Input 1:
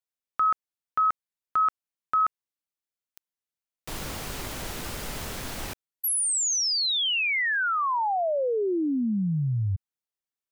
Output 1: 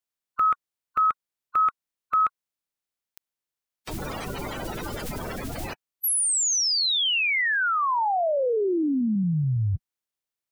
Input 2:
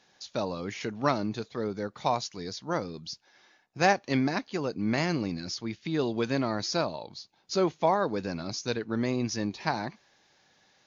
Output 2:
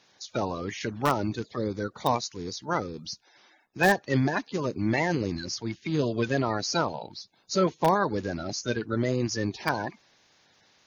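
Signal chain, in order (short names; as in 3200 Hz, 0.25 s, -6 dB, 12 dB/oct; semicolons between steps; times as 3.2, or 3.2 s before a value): bin magnitudes rounded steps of 30 dB; in parallel at -9 dB: wrapped overs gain 13.5 dB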